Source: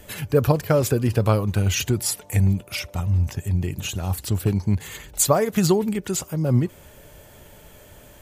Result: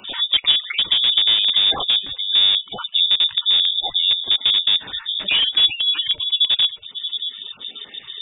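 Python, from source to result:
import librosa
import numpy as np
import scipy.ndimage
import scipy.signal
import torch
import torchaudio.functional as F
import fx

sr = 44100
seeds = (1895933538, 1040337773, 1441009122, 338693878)

p1 = fx.spec_dropout(x, sr, seeds[0], share_pct=25)
p2 = p1 + fx.echo_single(p1, sr, ms=628, db=-14.5, dry=0)
p3 = fx.spec_gate(p2, sr, threshold_db=-20, keep='strong')
p4 = fx.low_shelf(p3, sr, hz=66.0, db=7.5)
p5 = (np.mod(10.0 ** (15.0 / 20.0) * p4 + 1.0, 2.0) - 1.0) / 10.0 ** (15.0 / 20.0)
p6 = p4 + F.gain(torch.from_numpy(p5), -7.5).numpy()
p7 = fx.peak_eq(p6, sr, hz=170.0, db=7.5, octaves=0.26)
p8 = fx.freq_invert(p7, sr, carrier_hz=3600)
y = fx.band_squash(p8, sr, depth_pct=40)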